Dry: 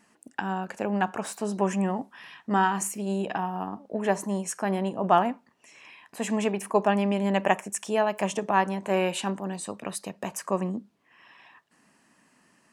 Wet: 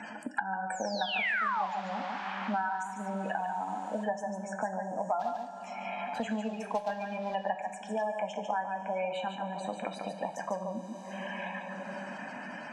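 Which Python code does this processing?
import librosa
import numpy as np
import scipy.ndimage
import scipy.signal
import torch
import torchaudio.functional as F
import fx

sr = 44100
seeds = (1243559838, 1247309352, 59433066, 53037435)

y = fx.highpass(x, sr, hz=310.0, slope=6)
y = fx.spec_gate(y, sr, threshold_db=-15, keep='strong')
y = fx.high_shelf(y, sr, hz=4400.0, db=9.5)
y = y + 0.79 * np.pad(y, (int(1.3 * sr / 1000.0), 0))[:len(y)]
y = fx.spec_paint(y, sr, seeds[0], shape='fall', start_s=0.7, length_s=0.96, low_hz=710.0, high_hz=8400.0, level_db=-16.0)
y = fx.quant_float(y, sr, bits=2, at=(5.19, 7.34), fade=0.02)
y = fx.air_absorb(y, sr, metres=200.0)
y = y + 10.0 ** (-6.5 / 20.0) * np.pad(y, (int(144 * sr / 1000.0), 0))[:len(y)]
y = fx.rev_double_slope(y, sr, seeds[1], early_s=0.41, late_s=4.2, knee_db=-18, drr_db=6.0)
y = fx.band_squash(y, sr, depth_pct=100)
y = y * librosa.db_to_amplitude(-9.0)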